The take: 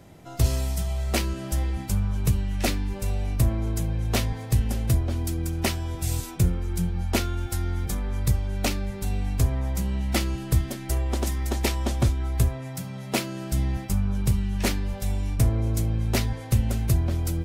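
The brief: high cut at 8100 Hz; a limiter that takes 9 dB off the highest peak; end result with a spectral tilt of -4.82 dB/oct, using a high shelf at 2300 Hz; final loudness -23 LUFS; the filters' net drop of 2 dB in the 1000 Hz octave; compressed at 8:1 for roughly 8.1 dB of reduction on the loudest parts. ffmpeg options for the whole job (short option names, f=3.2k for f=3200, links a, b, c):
-af "lowpass=8.1k,equalizer=f=1k:t=o:g=-4.5,highshelf=f=2.3k:g=8,acompressor=threshold=-24dB:ratio=8,volume=8.5dB,alimiter=limit=-12dB:level=0:latency=1"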